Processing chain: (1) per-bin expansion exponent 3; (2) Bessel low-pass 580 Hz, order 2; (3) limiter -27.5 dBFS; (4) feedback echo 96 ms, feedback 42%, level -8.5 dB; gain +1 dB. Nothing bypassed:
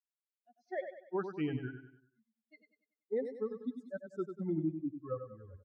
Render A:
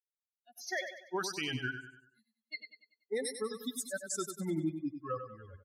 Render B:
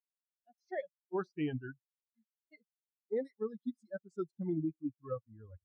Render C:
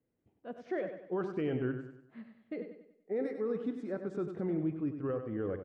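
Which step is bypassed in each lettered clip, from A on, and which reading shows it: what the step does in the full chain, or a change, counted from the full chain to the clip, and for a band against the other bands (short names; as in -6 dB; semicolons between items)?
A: 2, 2 kHz band +13.0 dB; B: 4, echo-to-direct -7.5 dB to none; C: 1, 1 kHz band -1.5 dB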